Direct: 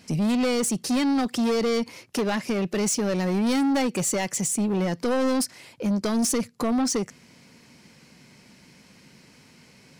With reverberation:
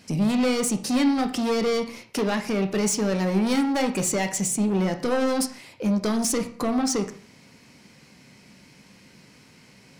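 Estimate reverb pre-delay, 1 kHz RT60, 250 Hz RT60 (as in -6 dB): 6 ms, 0.45 s, 0.45 s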